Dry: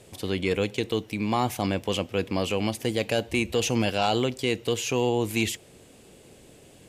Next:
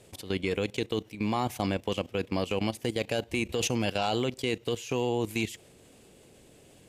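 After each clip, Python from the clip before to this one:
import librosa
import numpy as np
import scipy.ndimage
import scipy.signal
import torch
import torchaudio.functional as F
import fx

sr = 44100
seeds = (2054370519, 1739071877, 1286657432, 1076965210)

y = fx.level_steps(x, sr, step_db=14)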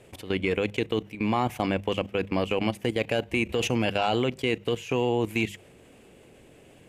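y = fx.high_shelf_res(x, sr, hz=3300.0, db=-6.5, q=1.5)
y = fx.hum_notches(y, sr, base_hz=50, count=4)
y = F.gain(torch.from_numpy(y), 3.5).numpy()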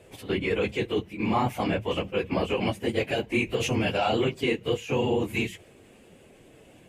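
y = fx.phase_scramble(x, sr, seeds[0], window_ms=50)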